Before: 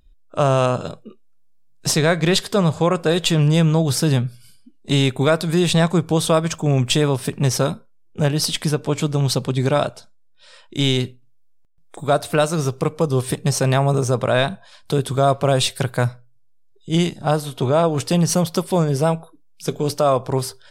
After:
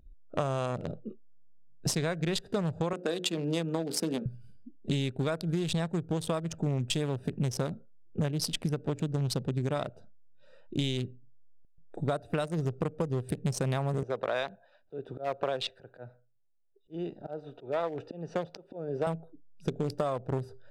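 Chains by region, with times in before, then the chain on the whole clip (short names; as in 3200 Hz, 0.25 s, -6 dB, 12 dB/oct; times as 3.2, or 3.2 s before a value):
2.93–4.26 steep high-pass 200 Hz + notches 60/120/180/240/300/360/420/480/540 Hz
14.03–19.07 Bessel low-pass 8300 Hz + auto swell 0.289 s + three-band isolator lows -18 dB, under 350 Hz, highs -18 dB, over 5100 Hz
whole clip: Wiener smoothing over 41 samples; compressor 12:1, threshold -27 dBFS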